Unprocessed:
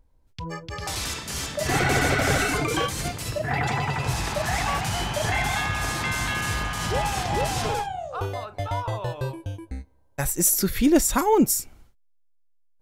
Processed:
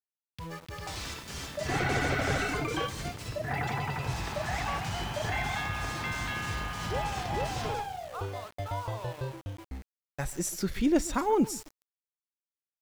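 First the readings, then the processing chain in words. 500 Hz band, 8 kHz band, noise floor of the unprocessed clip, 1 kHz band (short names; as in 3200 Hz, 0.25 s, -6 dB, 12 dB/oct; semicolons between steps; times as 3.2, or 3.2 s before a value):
-6.5 dB, -13.0 dB, -60 dBFS, -6.5 dB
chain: air absorption 64 m; analogue delay 0.135 s, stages 4096, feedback 31%, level -19 dB; sample gate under -37.5 dBFS; gain -6.5 dB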